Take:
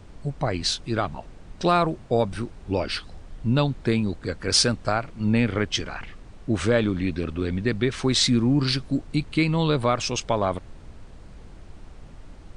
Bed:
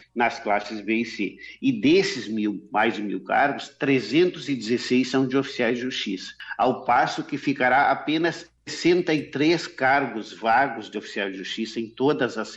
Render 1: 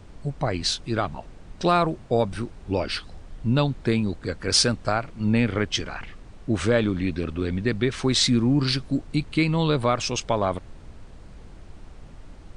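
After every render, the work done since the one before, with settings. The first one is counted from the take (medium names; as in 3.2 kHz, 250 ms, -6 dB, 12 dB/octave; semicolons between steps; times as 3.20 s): no audible change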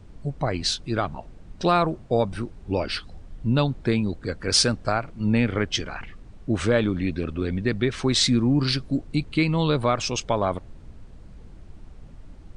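noise reduction 6 dB, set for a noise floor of -45 dBFS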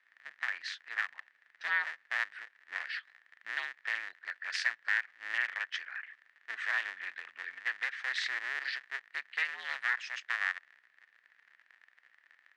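cycle switcher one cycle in 2, inverted; ladder band-pass 1.9 kHz, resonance 80%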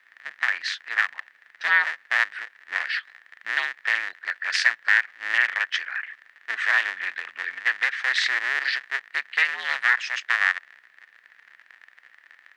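trim +11.5 dB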